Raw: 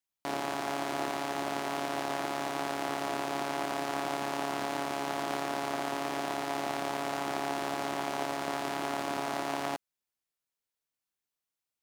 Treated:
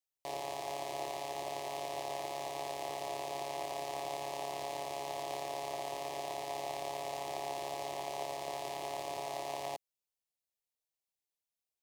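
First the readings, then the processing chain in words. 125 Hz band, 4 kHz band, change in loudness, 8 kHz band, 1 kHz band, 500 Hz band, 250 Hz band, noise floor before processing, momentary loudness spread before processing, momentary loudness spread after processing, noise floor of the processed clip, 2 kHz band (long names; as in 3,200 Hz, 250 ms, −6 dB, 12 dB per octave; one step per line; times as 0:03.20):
−8.0 dB, −5.0 dB, −6.0 dB, −4.0 dB, −5.5 dB, −4.0 dB, −15.5 dB, below −85 dBFS, 1 LU, 1 LU, below −85 dBFS, −11.0 dB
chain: parametric band 1,900 Hz +2.5 dB
phaser with its sweep stopped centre 600 Hz, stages 4
level −3.5 dB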